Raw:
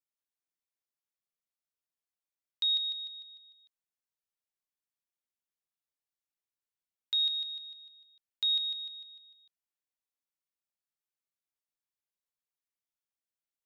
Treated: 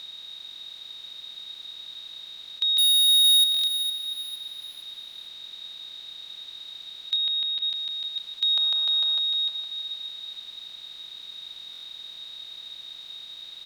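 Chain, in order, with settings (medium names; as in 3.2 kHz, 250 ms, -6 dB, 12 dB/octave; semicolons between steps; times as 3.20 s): spectral levelling over time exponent 0.2; 2.78–3.44 s: waveshaping leveller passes 5; 7.16–7.70 s: low-pass 3.9 kHz 24 dB/octave; 8.56–9.19 s: high-order bell 900 Hz +11.5 dB; feedback delay 460 ms, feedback 38%, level -10.5 dB; buffer glitch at 3.52/11.71 s, samples 1024, times 4; trim +4.5 dB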